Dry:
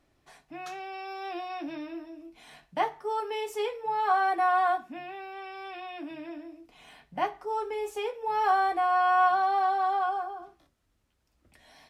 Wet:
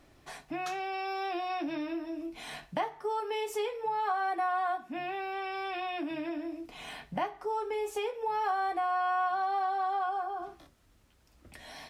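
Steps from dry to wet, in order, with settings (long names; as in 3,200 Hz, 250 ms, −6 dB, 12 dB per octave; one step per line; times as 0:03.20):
downward compressor 3 to 1, threshold −43 dBFS, peak gain reduction 17 dB
level +9 dB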